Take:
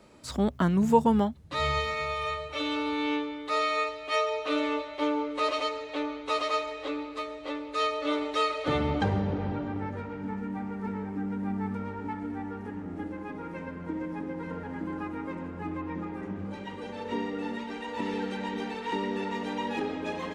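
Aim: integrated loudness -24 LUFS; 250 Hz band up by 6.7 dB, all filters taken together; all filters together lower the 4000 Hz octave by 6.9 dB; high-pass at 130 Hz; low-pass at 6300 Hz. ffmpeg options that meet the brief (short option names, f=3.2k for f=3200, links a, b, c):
-af "highpass=130,lowpass=6.3k,equalizer=f=250:t=o:g=9,equalizer=f=4k:t=o:g=-8.5,volume=3.5dB"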